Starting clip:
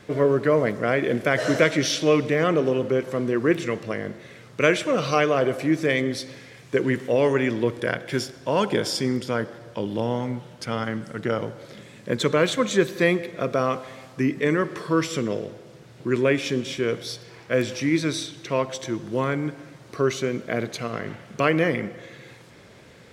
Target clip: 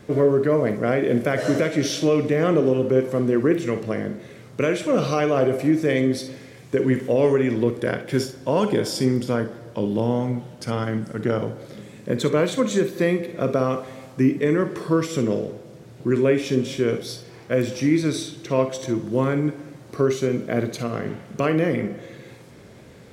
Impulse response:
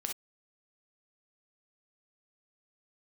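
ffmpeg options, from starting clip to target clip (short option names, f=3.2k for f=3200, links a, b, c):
-filter_complex "[0:a]equalizer=f=2.6k:w=0.3:g=-8,alimiter=limit=-15dB:level=0:latency=1:release=270,asplit=2[a][b];[1:a]atrim=start_sample=2205[c];[b][c]afir=irnorm=-1:irlink=0,volume=-0.5dB[d];[a][d]amix=inputs=2:normalize=0"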